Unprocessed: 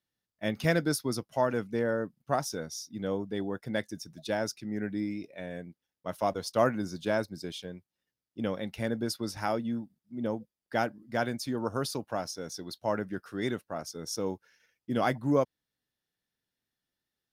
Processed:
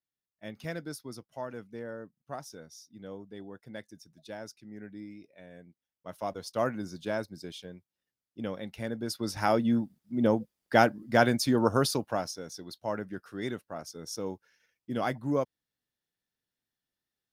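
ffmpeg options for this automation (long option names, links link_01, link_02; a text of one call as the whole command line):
ffmpeg -i in.wav -af "volume=7.5dB,afade=type=in:start_time=5.5:duration=1.24:silence=0.421697,afade=type=in:start_time=9.02:duration=0.77:silence=0.281838,afade=type=out:start_time=11.65:duration=0.8:silence=0.298538" out.wav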